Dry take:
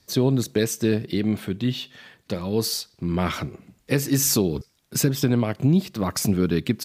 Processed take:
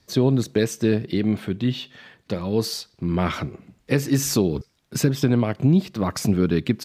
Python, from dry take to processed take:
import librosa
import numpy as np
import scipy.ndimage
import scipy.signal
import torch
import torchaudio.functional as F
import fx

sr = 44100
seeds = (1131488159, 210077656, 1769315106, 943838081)

y = fx.lowpass(x, sr, hz=4000.0, slope=6)
y = F.gain(torch.from_numpy(y), 1.5).numpy()